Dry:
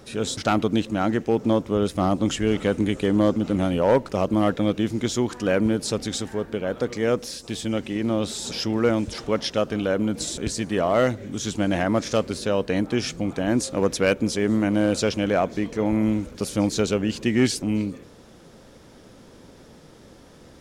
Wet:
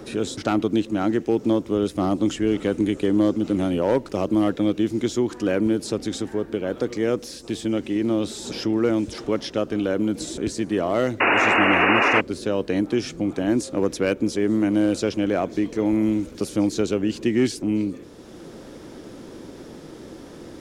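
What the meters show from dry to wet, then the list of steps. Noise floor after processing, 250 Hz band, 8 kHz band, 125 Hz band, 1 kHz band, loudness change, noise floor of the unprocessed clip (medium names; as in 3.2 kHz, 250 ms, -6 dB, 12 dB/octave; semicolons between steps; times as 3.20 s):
-41 dBFS, +1.5 dB, -4.5 dB, -3.0 dB, +2.0 dB, +1.0 dB, -49 dBFS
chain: peaking EQ 330 Hz +8.5 dB 0.67 oct; painted sound noise, 11.20–12.21 s, 230–2900 Hz -13 dBFS; three bands compressed up and down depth 40%; trim -4 dB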